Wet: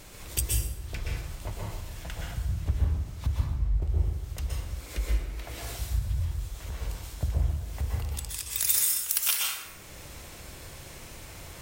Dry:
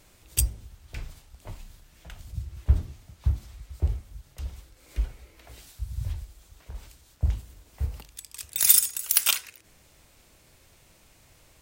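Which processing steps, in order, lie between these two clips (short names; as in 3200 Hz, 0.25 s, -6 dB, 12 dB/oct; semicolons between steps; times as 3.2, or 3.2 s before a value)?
3.39–3.82 tilt -3.5 dB/oct; compressor 2:1, threshold -47 dBFS, peak gain reduction 19 dB; plate-style reverb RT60 1 s, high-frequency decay 0.6×, pre-delay 0.11 s, DRR -3 dB; gain +9 dB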